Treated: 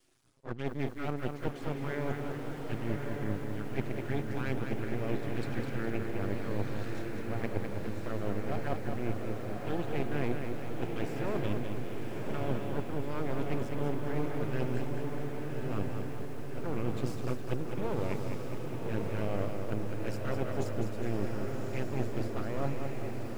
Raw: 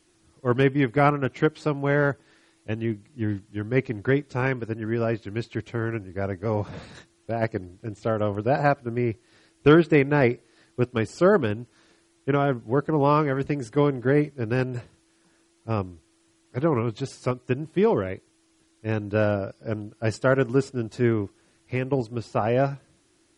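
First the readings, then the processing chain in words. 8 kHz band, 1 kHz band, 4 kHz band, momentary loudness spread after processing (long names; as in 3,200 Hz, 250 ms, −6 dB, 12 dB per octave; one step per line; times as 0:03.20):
can't be measured, −12.0 dB, −8.0 dB, 4 LU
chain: reversed playback
downward compressor 16 to 1, threshold −27 dBFS, peak gain reduction 17.5 dB
reversed playback
flanger swept by the level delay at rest 8.1 ms, full sweep at −26.5 dBFS
half-wave rectification
feedback delay with all-pass diffusion 1,129 ms, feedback 59%, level −3.5 dB
feedback echo at a low word length 205 ms, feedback 55%, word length 9 bits, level −6 dB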